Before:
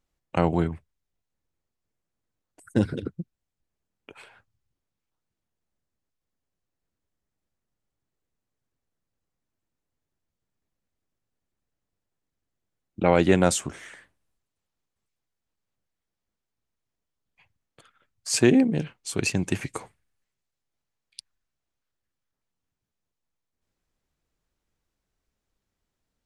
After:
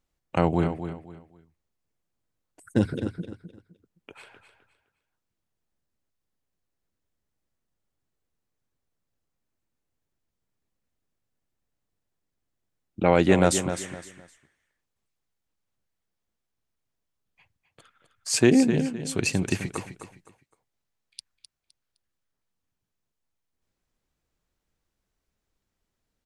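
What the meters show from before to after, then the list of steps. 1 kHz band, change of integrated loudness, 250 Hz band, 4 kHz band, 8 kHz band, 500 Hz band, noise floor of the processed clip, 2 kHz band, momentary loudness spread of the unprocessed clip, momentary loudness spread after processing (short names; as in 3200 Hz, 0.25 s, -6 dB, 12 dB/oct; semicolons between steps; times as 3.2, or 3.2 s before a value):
+0.5 dB, -0.5 dB, +0.5 dB, +0.5 dB, +0.5 dB, +0.5 dB, -82 dBFS, +0.5 dB, 20 LU, 20 LU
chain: feedback echo 0.257 s, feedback 27%, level -10 dB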